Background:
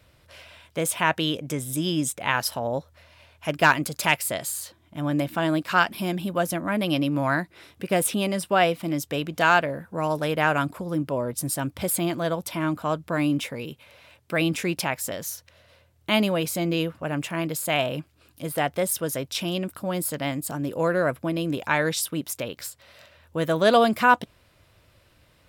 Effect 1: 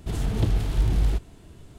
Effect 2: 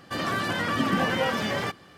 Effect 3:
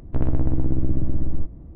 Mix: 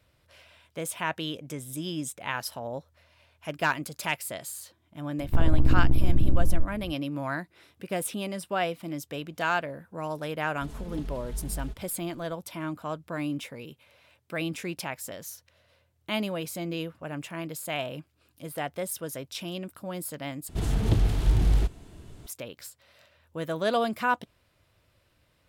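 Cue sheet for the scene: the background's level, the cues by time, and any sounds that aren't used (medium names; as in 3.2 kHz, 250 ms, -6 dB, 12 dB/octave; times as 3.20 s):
background -8 dB
5.19 s: add 3 -3 dB + phaser 1.8 Hz, delay 1.8 ms, feedback 36%
10.55 s: add 1 -16 dB + comb 4.7 ms, depth 95%
20.49 s: replace with 1
not used: 2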